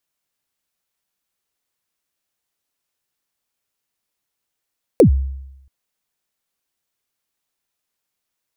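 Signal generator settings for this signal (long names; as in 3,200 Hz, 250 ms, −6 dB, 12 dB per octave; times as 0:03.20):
synth kick length 0.68 s, from 570 Hz, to 67 Hz, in 101 ms, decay 0.90 s, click on, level −4 dB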